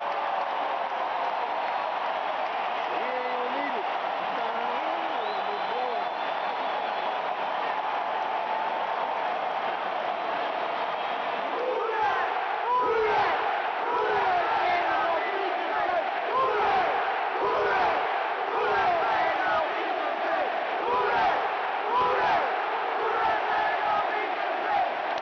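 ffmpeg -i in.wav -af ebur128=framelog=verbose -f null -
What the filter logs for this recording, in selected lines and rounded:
Integrated loudness:
  I:         -27.0 LUFS
  Threshold: -37.0 LUFS
Loudness range:
  LRA:         3.5 LU
  Threshold: -46.9 LUFS
  LRA low:   -28.9 LUFS
  LRA high:  -25.4 LUFS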